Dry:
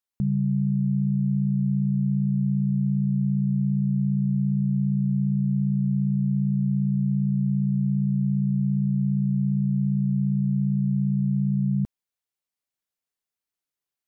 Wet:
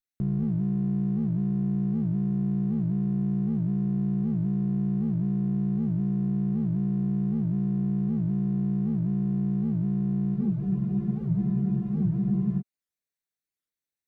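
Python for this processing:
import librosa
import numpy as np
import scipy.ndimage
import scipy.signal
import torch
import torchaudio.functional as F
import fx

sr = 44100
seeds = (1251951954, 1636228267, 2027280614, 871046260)

y = fx.lower_of_two(x, sr, delay_ms=0.49)
y = y + 10.0 ** (-9.0 / 20.0) * np.pad(y, (int(234 * sr / 1000.0), 0))[:len(y)]
y = fx.spec_freeze(y, sr, seeds[0], at_s=10.38, hold_s=2.21)
y = fx.record_warp(y, sr, rpm=78.0, depth_cents=250.0)
y = y * 10.0 ** (-3.0 / 20.0)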